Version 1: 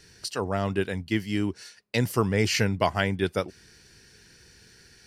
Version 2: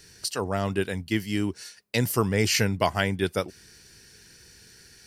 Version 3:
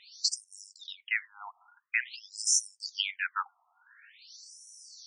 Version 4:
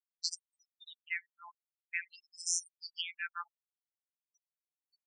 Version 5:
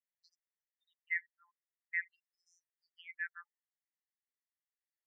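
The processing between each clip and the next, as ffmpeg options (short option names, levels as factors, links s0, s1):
-af "highshelf=f=7500:g=10.5"
-af "afftfilt=real='re*between(b*sr/1024,930*pow(7700/930,0.5+0.5*sin(2*PI*0.48*pts/sr))/1.41,930*pow(7700/930,0.5+0.5*sin(2*PI*0.48*pts/sr))*1.41)':imag='im*between(b*sr/1024,930*pow(7700/930,0.5+0.5*sin(2*PI*0.48*pts/sr))/1.41,930*pow(7700/930,0.5+0.5*sin(2*PI*0.48*pts/sr))*1.41)':win_size=1024:overlap=0.75,volume=1.68"
-af "afftfilt=real='re*gte(hypot(re,im),0.0224)':imag='im*gte(hypot(re,im),0.0224)':win_size=1024:overlap=0.75,afftfilt=real='hypot(re,im)*cos(PI*b)':imag='0':win_size=1024:overlap=0.75,volume=0.631"
-af "asuperpass=centerf=1800:order=4:qfactor=3.8,aecho=1:1:1:0.3,volume=1.41"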